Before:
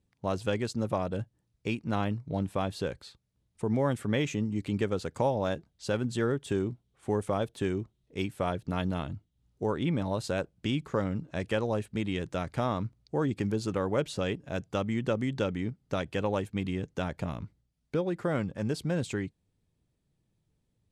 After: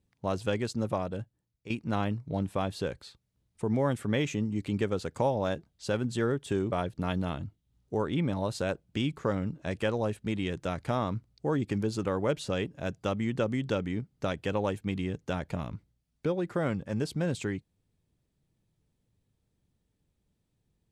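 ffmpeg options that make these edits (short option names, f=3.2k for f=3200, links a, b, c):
-filter_complex "[0:a]asplit=3[a][b][c];[a]atrim=end=1.7,asetpts=PTS-STARTPTS,afade=t=out:st=0.86:d=0.84:silence=0.237137[d];[b]atrim=start=1.7:end=6.722,asetpts=PTS-STARTPTS,afade=t=in:d=0.004:c=hsin:silence=0.237137[e];[c]atrim=start=8.408[f];[d][e]concat=n=2:v=0:a=1[g];[g][f]acrossfade=d=0.004:c1=hsin:c2=hsin"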